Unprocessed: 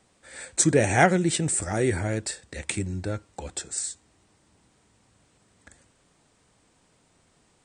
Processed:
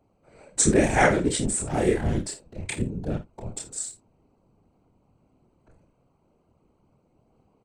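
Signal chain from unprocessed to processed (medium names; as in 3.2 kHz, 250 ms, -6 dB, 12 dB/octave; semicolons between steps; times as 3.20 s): local Wiener filter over 25 samples; chorus voices 4, 0.49 Hz, delay 28 ms, depth 2.8 ms; whisper effect; 1.67–2.10 s: doubling 27 ms -4 dB; early reflections 48 ms -13.5 dB, 58 ms -16.5 dB; trim +4 dB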